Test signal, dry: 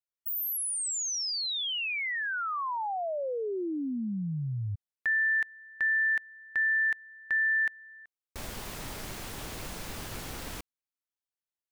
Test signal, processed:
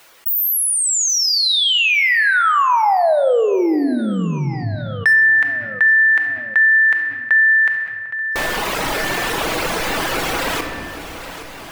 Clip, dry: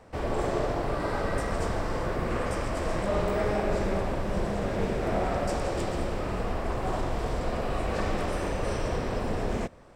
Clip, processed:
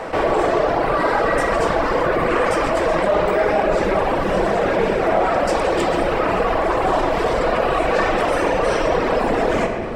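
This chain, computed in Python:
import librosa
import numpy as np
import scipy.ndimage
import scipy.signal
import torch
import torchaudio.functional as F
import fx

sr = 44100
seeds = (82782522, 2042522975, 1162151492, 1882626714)

p1 = fx.hum_notches(x, sr, base_hz=60, count=2)
p2 = fx.dereverb_blind(p1, sr, rt60_s=1.6)
p3 = fx.bass_treble(p2, sr, bass_db=-14, treble_db=-9)
p4 = fx.rider(p3, sr, range_db=3, speed_s=0.5)
p5 = p3 + F.gain(torch.from_numpy(p4), 3.0).numpy()
p6 = np.clip(p5, -10.0 ** (-17.0 / 20.0), 10.0 ** (-17.0 / 20.0))
p7 = fx.echo_feedback(p6, sr, ms=817, feedback_pct=55, wet_db=-23.5)
p8 = fx.room_shoebox(p7, sr, seeds[0], volume_m3=730.0, walls='mixed', distance_m=0.65)
p9 = fx.env_flatten(p8, sr, amount_pct=50)
y = F.gain(torch.from_numpy(p9), 6.5).numpy()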